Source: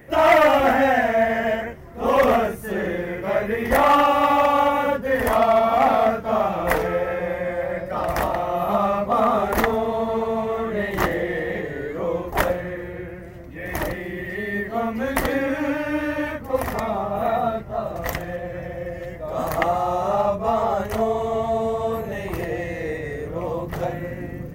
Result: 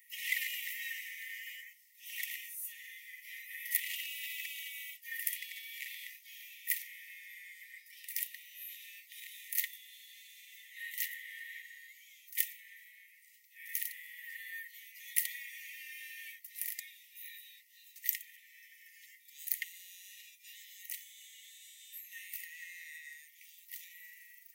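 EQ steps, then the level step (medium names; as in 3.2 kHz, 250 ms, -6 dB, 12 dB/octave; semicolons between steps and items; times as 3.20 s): differentiator; dynamic bell 5.2 kHz, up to -4 dB, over -57 dBFS, Q 1.9; brick-wall FIR high-pass 1.8 kHz; -1.5 dB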